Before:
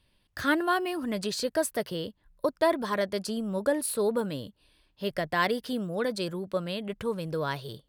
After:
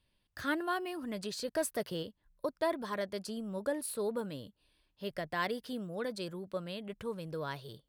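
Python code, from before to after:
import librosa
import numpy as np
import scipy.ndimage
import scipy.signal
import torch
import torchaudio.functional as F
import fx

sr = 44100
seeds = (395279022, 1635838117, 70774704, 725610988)

y = fx.leveller(x, sr, passes=1, at=(1.48, 2.03))
y = y * 10.0 ** (-8.0 / 20.0)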